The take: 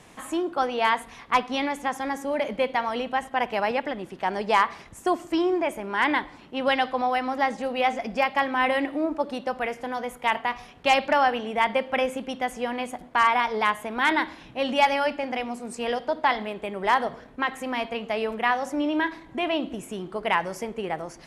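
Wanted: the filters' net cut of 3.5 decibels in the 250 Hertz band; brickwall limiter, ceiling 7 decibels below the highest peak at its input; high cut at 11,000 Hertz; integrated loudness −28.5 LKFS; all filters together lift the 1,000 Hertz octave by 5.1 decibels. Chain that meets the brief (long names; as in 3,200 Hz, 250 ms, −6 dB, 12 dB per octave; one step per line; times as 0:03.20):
low-pass filter 11,000 Hz
parametric band 250 Hz −5 dB
parametric band 1,000 Hz +6.5 dB
level −3.5 dB
brickwall limiter −14.5 dBFS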